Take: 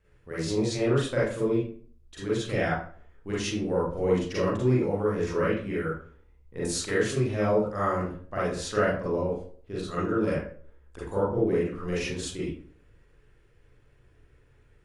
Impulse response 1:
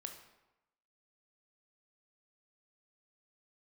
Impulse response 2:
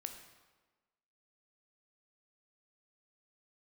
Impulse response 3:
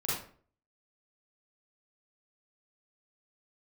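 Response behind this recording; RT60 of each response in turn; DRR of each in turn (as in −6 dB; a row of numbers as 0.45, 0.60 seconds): 3; 0.95, 1.3, 0.50 seconds; 4.0, 5.5, −8.5 decibels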